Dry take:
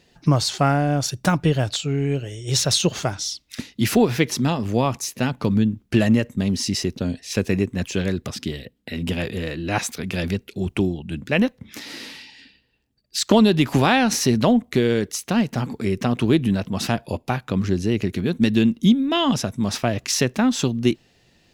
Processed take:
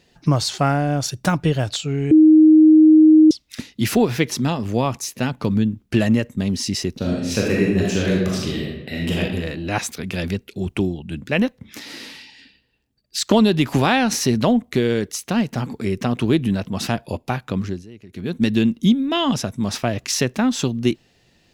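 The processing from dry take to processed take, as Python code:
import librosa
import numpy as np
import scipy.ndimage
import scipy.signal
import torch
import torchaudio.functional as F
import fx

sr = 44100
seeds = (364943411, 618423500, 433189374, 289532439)

y = fx.reverb_throw(x, sr, start_s=6.92, length_s=2.27, rt60_s=1.1, drr_db=-3.5)
y = fx.edit(y, sr, fx.bleep(start_s=2.11, length_s=1.2, hz=312.0, db=-6.5),
    fx.fade_down_up(start_s=17.42, length_s=1.1, db=-20.0, fade_s=0.44, curve='qsin'), tone=tone)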